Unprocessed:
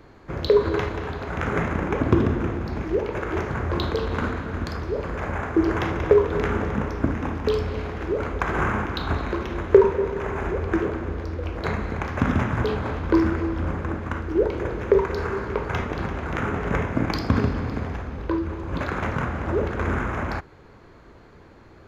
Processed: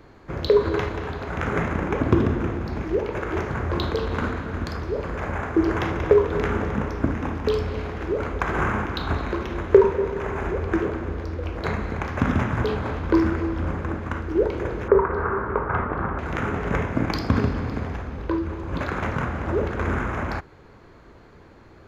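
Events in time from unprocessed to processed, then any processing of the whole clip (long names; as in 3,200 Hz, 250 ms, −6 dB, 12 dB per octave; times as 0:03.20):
0:14.88–0:16.19: low-pass with resonance 1,300 Hz, resonance Q 2.3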